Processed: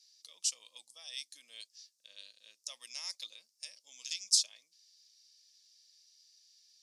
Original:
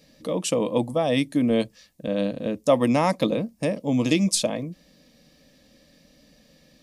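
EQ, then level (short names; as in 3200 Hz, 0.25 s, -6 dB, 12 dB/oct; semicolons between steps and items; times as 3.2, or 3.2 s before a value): ladder band-pass 6000 Hz, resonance 50%; +6.5 dB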